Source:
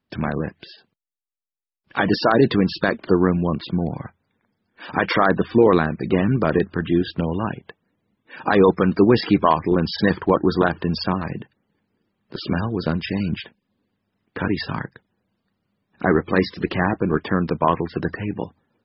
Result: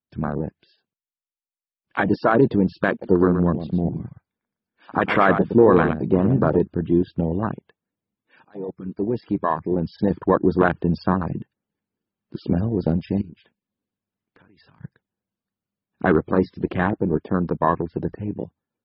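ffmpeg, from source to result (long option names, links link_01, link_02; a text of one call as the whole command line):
ffmpeg -i in.wav -filter_complex "[0:a]asettb=1/sr,asplit=3[link_01][link_02][link_03];[link_01]atrim=end=2.904[link_04];[link_02]atrim=start=2.9:end=6.57,asetpts=PTS-STARTPTS,afade=type=in:duration=0.004:curve=qsin,afade=type=out:start_time=3.666:duration=0.004:curve=qsin,aecho=1:1:115:0.422,atrim=end_sample=161847[link_05];[link_03]atrim=start=6.566[link_06];[link_04][link_05]acrossfade=duration=0.004:curve1=hsin:curve2=qsin[link_07];[link_07][link_06]acrossfade=duration=0.004:curve1=qsin:curve2=hsin,asettb=1/sr,asplit=3[link_08][link_09][link_10];[link_08]atrim=end=13.214[link_11];[link_09]atrim=start=13.21:end=14.83,asetpts=PTS-STARTPTS,afade=type=in:duration=0.004:curve=qsin,afade=type=out:start_time=1.616:duration=0.004:curve=qsin,acompressor=threshold=-35dB:ratio=20:attack=3.2:release=140:knee=1:detection=peak[link_12];[link_10]atrim=start=14.826[link_13];[link_11][link_12]acrossfade=duration=0.004:curve1=hsin:curve2=qsin[link_14];[link_14][link_13]acrossfade=duration=0.004:curve1=qsin:curve2=hsin,asplit=2[link_15][link_16];[link_15]atrim=end=8.45,asetpts=PTS-STARTPTS,afade=type=out:start_time=8.446:duration=0.004:curve=hsin:silence=0.0668344[link_17];[link_16]atrim=start=8.45,asetpts=PTS-STARTPTS,afade=type=in:duration=2.57:silence=0.0668344[link_18];[link_17][link_18]concat=n=2:v=0:a=1,bandreject=frequency=1900:width=21,afwtdn=0.0708,dynaudnorm=framelen=380:gausssize=17:maxgain=11.5dB,volume=-1dB" out.wav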